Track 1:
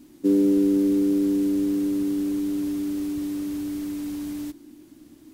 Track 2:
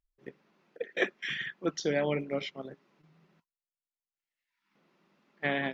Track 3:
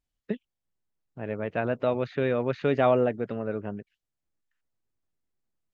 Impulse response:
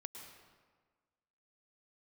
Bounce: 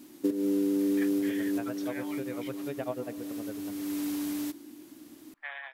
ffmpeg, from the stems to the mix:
-filter_complex "[0:a]highpass=f=370:p=1,equalizer=f=12k:t=o:w=0.21:g=5.5,volume=2.5dB,asplit=2[a][b];[b]volume=-22.5dB[c];[1:a]highpass=f=800:w=0.5412,highpass=f=800:w=1.3066,equalizer=f=1.2k:w=0.66:g=9,volume=-13.5dB[d];[2:a]tremolo=f=10:d=0.99,volume=-12.5dB,asplit=3[e][f][g];[f]volume=-4.5dB[h];[g]apad=whole_len=235446[i];[a][i]sidechaincompress=threshold=-51dB:ratio=5:attack=47:release=403[j];[3:a]atrim=start_sample=2205[k];[c][h]amix=inputs=2:normalize=0[l];[l][k]afir=irnorm=-1:irlink=0[m];[j][d][e][m]amix=inputs=4:normalize=0,acompressor=threshold=-24dB:ratio=6"

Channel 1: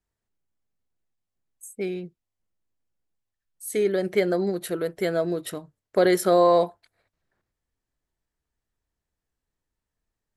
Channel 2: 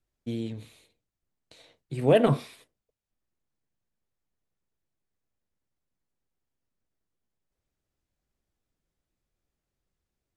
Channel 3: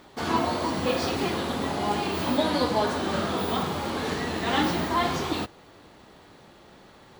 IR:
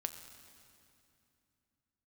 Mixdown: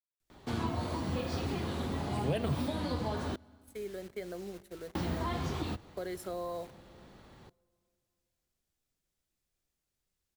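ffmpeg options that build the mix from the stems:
-filter_complex "[0:a]aeval=exprs='val(0)+0.00794*(sin(2*PI*50*n/s)+sin(2*PI*2*50*n/s)/2+sin(2*PI*3*50*n/s)/3+sin(2*PI*4*50*n/s)/4+sin(2*PI*5*50*n/s)/5)':c=same,acrusher=bits=5:mix=0:aa=0.000001,agate=range=-19dB:threshold=-31dB:ratio=16:detection=peak,volume=-19.5dB,asplit=2[a][b];[b]volume=-9.5dB[c];[1:a]highshelf=f=2.4k:g=10,adelay=200,volume=-5dB[d];[2:a]lowshelf=f=180:g=11,adelay=300,volume=-8dB,asplit=3[e][f][g];[e]atrim=end=3.36,asetpts=PTS-STARTPTS,afade=t=out:st=3.356:d=0.004:c=hsin[h];[f]atrim=start=3.36:end=4.95,asetpts=PTS-STARTPTS,volume=0[i];[g]atrim=start=4.95,asetpts=PTS-STARTPTS,afade=t=in:d=0.004:c=hsin[j];[h][i][j]concat=n=3:v=0:a=1,asplit=2[k][l];[l]volume=-18.5dB[m];[3:a]atrim=start_sample=2205[n];[c][m]amix=inputs=2:normalize=0[o];[o][n]afir=irnorm=-1:irlink=0[p];[a][d][k][p]amix=inputs=4:normalize=0,acrossover=split=150[q][r];[r]acompressor=threshold=-36dB:ratio=2.5[s];[q][s]amix=inputs=2:normalize=0"

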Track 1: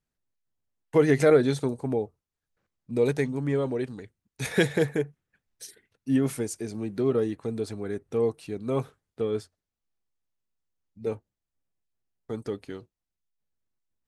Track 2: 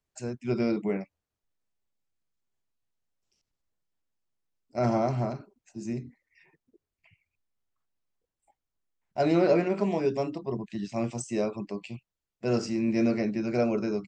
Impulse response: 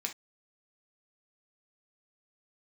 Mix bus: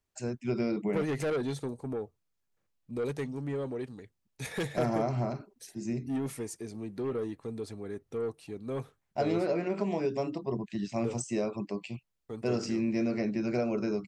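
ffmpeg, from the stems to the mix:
-filter_complex "[0:a]bandreject=f=1.5k:w=15,asoftclip=type=tanh:threshold=-21dB,volume=-6dB[a];[1:a]acompressor=threshold=-26dB:ratio=6,volume=0dB[b];[a][b]amix=inputs=2:normalize=0"

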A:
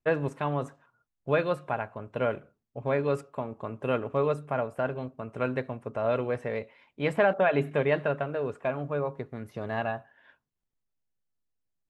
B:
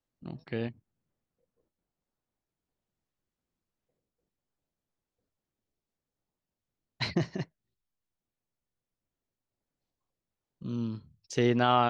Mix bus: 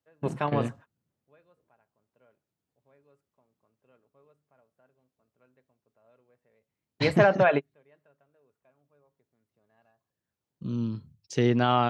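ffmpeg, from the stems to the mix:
-filter_complex "[0:a]volume=2.5dB[a];[1:a]equalizer=f=75:w=0.48:g=9,volume=0dB,asplit=2[b][c];[c]apad=whole_len=524731[d];[a][d]sidechaingate=range=-39dB:threshold=-47dB:ratio=16:detection=peak[e];[e][b]amix=inputs=2:normalize=0,highpass=120"

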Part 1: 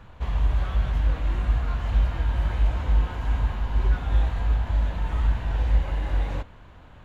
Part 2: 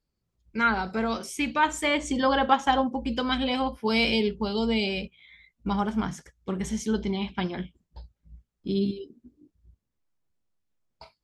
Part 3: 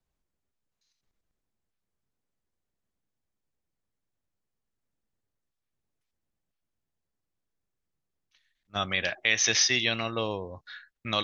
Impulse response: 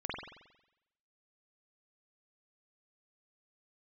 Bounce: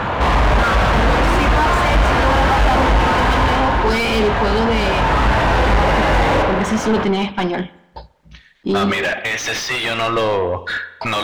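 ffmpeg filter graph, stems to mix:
-filter_complex "[0:a]volume=9dB,afade=t=out:st=3.22:d=0.58:silence=0.298538,afade=t=in:st=4.72:d=0.66:silence=0.334965,asplit=2[a][b];[b]volume=-8dB[c];[1:a]tremolo=f=0.73:d=0.37,volume=-12.5dB,asplit=2[d][e];[e]volume=-22.5dB[f];[2:a]asubboost=boost=4.5:cutoff=80,acompressor=threshold=-29dB:ratio=6,volume=-8.5dB,asplit=2[g][h];[h]volume=-18dB[i];[3:a]atrim=start_sample=2205[j];[c][f][i]amix=inputs=3:normalize=0[k];[k][j]afir=irnorm=-1:irlink=0[l];[a][d][g][l]amix=inputs=4:normalize=0,acontrast=36,asplit=2[m][n];[n]highpass=f=720:p=1,volume=39dB,asoftclip=type=tanh:threshold=-5.5dB[o];[m][o]amix=inputs=2:normalize=0,lowpass=f=1.2k:p=1,volume=-6dB"

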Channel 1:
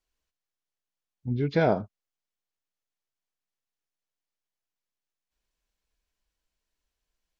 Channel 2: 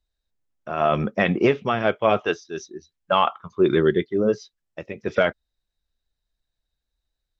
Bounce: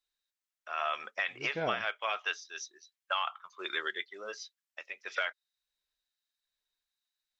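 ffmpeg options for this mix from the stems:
-filter_complex "[0:a]lowpass=4k,tremolo=f=1.2:d=0.99,volume=-7.5dB[a];[1:a]highpass=1.4k,volume=-0.5dB[b];[a][b]amix=inputs=2:normalize=0,lowshelf=f=290:g=-10,alimiter=limit=-20dB:level=0:latency=1:release=158"

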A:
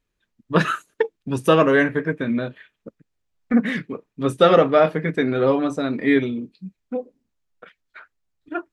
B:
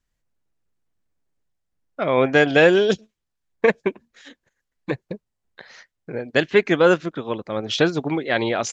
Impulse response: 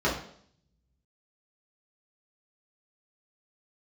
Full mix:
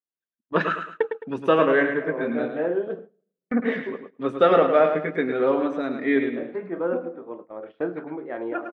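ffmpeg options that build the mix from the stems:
-filter_complex "[0:a]agate=range=-8dB:threshold=-42dB:ratio=16:detection=peak,volume=-2.5dB,asplit=3[a][b][c];[b]volume=-7.5dB[d];[1:a]lowpass=1.4k,volume=-11dB,asplit=2[e][f];[f]volume=-19dB[g];[c]apad=whole_len=384579[h];[e][h]sidechaincompress=threshold=-28dB:ratio=8:attack=20:release=860[i];[2:a]atrim=start_sample=2205[j];[g][j]afir=irnorm=-1:irlink=0[k];[d]aecho=0:1:107|214|321|428|535:1|0.34|0.116|0.0393|0.0134[l];[a][i][k][l]amix=inputs=4:normalize=0,highpass=260,lowpass=2.6k,agate=range=-14dB:threshold=-40dB:ratio=16:detection=peak"

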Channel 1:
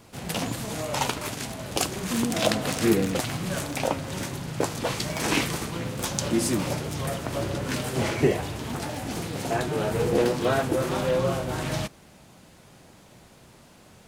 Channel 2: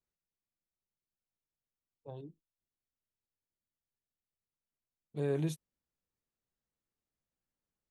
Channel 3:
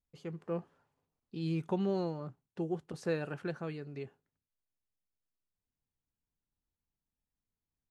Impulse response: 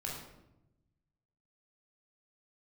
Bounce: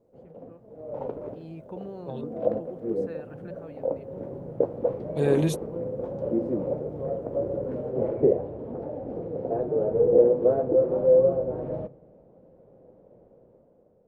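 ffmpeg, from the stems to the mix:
-filter_complex "[0:a]lowpass=f=510:t=q:w=4.9,volume=-16dB,asplit=2[a][b];[b]volume=-21.5dB[c];[1:a]volume=0dB[d];[2:a]equalizer=f=5.6k:t=o:w=2.2:g=-11,volume=-16.5dB,asplit=2[e][f];[f]apad=whole_len=620725[g];[a][g]sidechaincompress=threshold=-60dB:ratio=10:attack=41:release=503[h];[3:a]atrim=start_sample=2205[i];[c][i]afir=irnorm=-1:irlink=0[j];[h][d][e][j]amix=inputs=4:normalize=0,equalizer=f=86:t=o:w=1.8:g=-4.5,dynaudnorm=f=260:g=7:m=10.5dB"

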